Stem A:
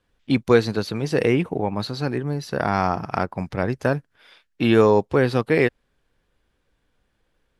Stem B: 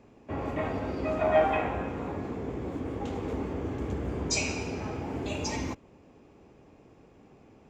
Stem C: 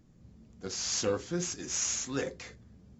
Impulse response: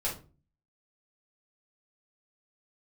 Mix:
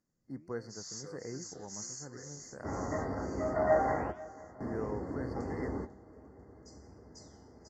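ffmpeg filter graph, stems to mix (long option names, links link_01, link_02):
-filter_complex "[0:a]volume=-19dB,asplit=2[link_01][link_02];[1:a]adelay=2350,volume=0.5dB,asplit=2[link_03][link_04];[link_04]volume=-20dB[link_05];[2:a]aemphasis=mode=production:type=bsi,volume=-13dB,asplit=2[link_06][link_07];[link_07]volume=-7dB[link_08];[link_02]apad=whole_len=442943[link_09];[link_03][link_09]sidechaingate=range=-24dB:threshold=-59dB:ratio=16:detection=peak[link_10];[link_05][link_08]amix=inputs=2:normalize=0,aecho=0:1:495|990|1485|1980|2475|2970|3465|3960:1|0.55|0.303|0.166|0.0915|0.0503|0.0277|0.0152[link_11];[link_01][link_10][link_06][link_11]amix=inputs=4:normalize=0,afftfilt=real='re*(1-between(b*sr/4096,2100,4300))':imag='im*(1-between(b*sr/4096,2100,4300))':win_size=4096:overlap=0.75,lowpass=7500,flanger=delay=7.6:depth=7.8:regen=89:speed=1.4:shape=sinusoidal"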